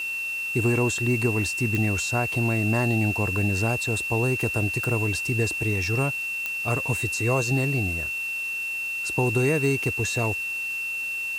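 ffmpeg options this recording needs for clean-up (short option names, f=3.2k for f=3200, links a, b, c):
-af "adeclick=t=4,bandreject=f=2.7k:w=30,afwtdn=0.0056"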